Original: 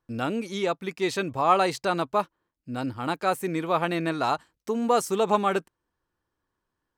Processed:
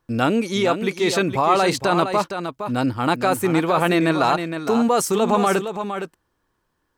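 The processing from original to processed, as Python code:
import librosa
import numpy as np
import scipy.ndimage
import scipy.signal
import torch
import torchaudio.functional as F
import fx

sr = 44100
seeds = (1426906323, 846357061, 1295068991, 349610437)

p1 = fx.over_compress(x, sr, threshold_db=-26.0, ratio=-0.5)
p2 = x + (p1 * 10.0 ** (0.5 / 20.0))
p3 = p2 + 10.0 ** (-8.5 / 20.0) * np.pad(p2, (int(463 * sr / 1000.0), 0))[:len(p2)]
y = p3 * 10.0 ** (1.5 / 20.0)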